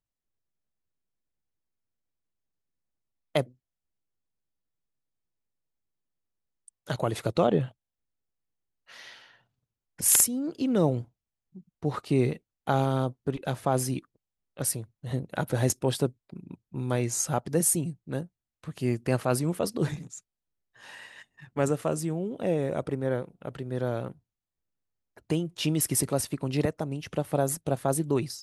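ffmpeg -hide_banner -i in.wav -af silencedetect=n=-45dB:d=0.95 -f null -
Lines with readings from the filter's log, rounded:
silence_start: 0.00
silence_end: 3.35 | silence_duration: 3.35
silence_start: 3.47
silence_end: 6.68 | silence_duration: 3.21
silence_start: 7.71
silence_end: 8.90 | silence_duration: 1.18
silence_start: 24.12
silence_end: 25.17 | silence_duration: 1.05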